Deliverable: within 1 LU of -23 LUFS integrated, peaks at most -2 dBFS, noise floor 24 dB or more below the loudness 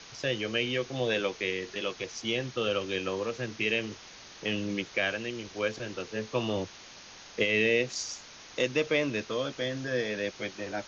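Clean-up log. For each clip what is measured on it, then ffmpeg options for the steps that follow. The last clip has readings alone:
noise floor -49 dBFS; noise floor target -55 dBFS; loudness -31.0 LUFS; peak level -13.5 dBFS; loudness target -23.0 LUFS
-> -af "afftdn=nr=6:nf=-49"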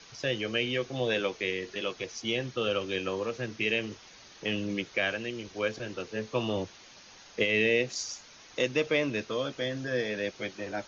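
noise floor -53 dBFS; noise floor target -55 dBFS
-> -af "afftdn=nr=6:nf=-53"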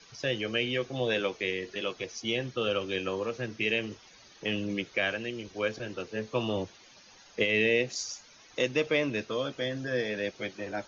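noise floor -56 dBFS; loudness -31.0 LUFS; peak level -13.5 dBFS; loudness target -23.0 LUFS
-> -af "volume=2.51"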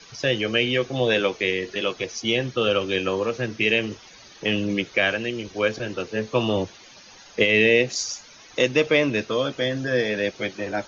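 loudness -23.0 LUFS; peak level -5.5 dBFS; noise floor -48 dBFS

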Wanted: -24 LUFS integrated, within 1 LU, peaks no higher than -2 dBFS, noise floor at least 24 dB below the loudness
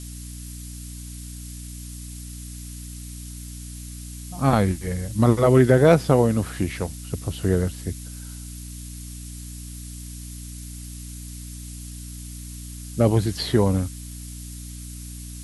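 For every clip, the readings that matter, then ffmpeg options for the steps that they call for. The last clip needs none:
hum 60 Hz; highest harmonic 300 Hz; hum level -36 dBFS; noise floor -37 dBFS; noise floor target -45 dBFS; loudness -21.0 LUFS; peak level -3.5 dBFS; loudness target -24.0 LUFS
-> -af "bandreject=f=60:t=h:w=4,bandreject=f=120:t=h:w=4,bandreject=f=180:t=h:w=4,bandreject=f=240:t=h:w=4,bandreject=f=300:t=h:w=4"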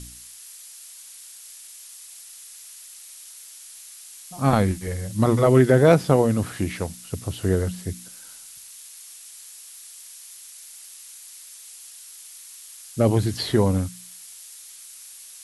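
hum not found; noise floor -44 dBFS; noise floor target -46 dBFS
-> -af "afftdn=nr=6:nf=-44"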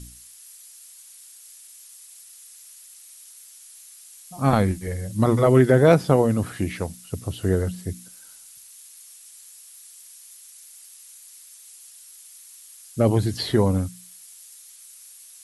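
noise floor -47 dBFS; loudness -21.5 LUFS; peak level -3.5 dBFS; loudness target -24.0 LUFS
-> -af "volume=0.75"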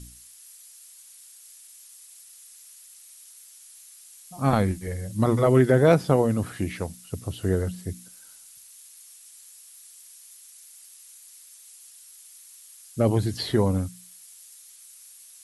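loudness -24.0 LUFS; peak level -6.0 dBFS; noise floor -50 dBFS

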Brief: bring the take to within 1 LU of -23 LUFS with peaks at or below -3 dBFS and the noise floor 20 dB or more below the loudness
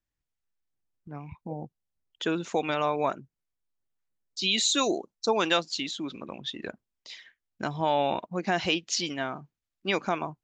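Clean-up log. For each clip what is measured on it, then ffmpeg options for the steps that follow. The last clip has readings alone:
loudness -28.5 LUFS; peak level -10.5 dBFS; loudness target -23.0 LUFS
-> -af "volume=1.88"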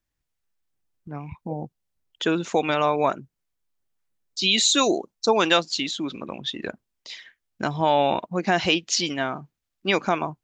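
loudness -23.0 LUFS; peak level -5.0 dBFS; noise floor -81 dBFS

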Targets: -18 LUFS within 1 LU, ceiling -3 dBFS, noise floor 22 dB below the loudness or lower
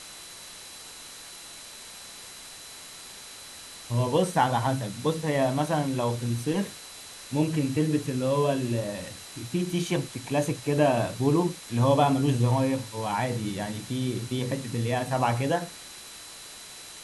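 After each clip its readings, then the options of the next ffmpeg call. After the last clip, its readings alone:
steady tone 4 kHz; tone level -49 dBFS; noise floor -44 dBFS; noise floor target -49 dBFS; loudness -27.0 LUFS; peak level -8.5 dBFS; loudness target -18.0 LUFS
-> -af "bandreject=f=4000:w=30"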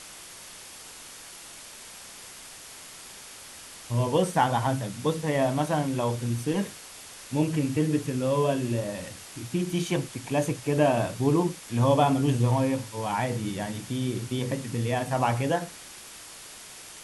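steady tone not found; noise floor -45 dBFS; noise floor target -49 dBFS
-> -af "afftdn=nr=6:nf=-45"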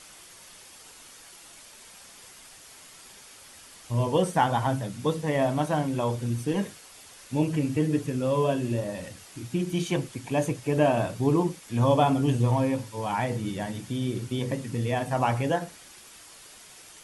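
noise floor -50 dBFS; loudness -27.0 LUFS; peak level -8.5 dBFS; loudness target -18.0 LUFS
-> -af "volume=2.82,alimiter=limit=0.708:level=0:latency=1"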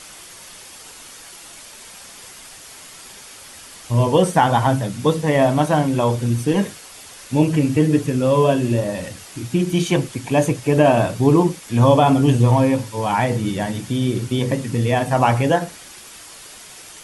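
loudness -18.0 LUFS; peak level -3.0 dBFS; noise floor -41 dBFS

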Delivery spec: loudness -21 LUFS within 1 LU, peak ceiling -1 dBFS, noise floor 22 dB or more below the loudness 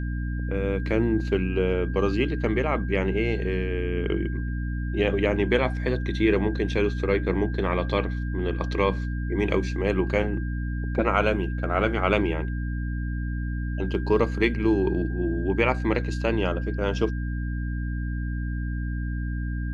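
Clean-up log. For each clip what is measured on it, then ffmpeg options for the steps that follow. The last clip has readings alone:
hum 60 Hz; highest harmonic 300 Hz; hum level -26 dBFS; steady tone 1.6 kHz; tone level -41 dBFS; loudness -26.0 LUFS; peak level -7.0 dBFS; loudness target -21.0 LUFS
-> -af "bandreject=f=60:t=h:w=4,bandreject=f=120:t=h:w=4,bandreject=f=180:t=h:w=4,bandreject=f=240:t=h:w=4,bandreject=f=300:t=h:w=4"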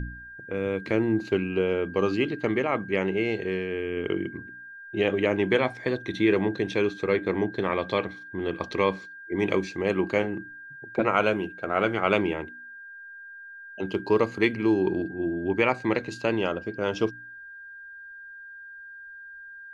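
hum not found; steady tone 1.6 kHz; tone level -41 dBFS
-> -af "bandreject=f=1600:w=30"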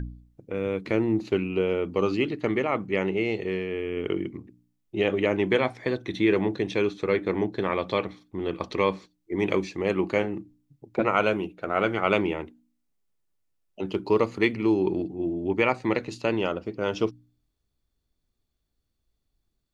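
steady tone not found; loudness -26.5 LUFS; peak level -7.5 dBFS; loudness target -21.0 LUFS
-> -af "volume=1.88"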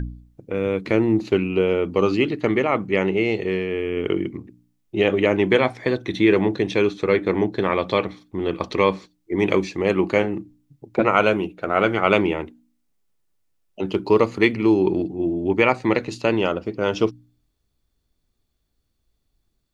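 loudness -21.5 LUFS; peak level -2.0 dBFS; noise floor -72 dBFS

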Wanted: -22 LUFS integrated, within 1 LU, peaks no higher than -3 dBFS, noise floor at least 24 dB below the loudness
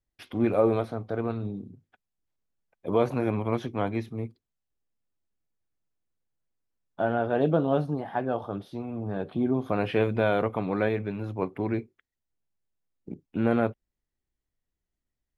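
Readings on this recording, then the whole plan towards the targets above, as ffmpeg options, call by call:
loudness -28.5 LUFS; peak level -10.0 dBFS; loudness target -22.0 LUFS
-> -af "volume=2.11"

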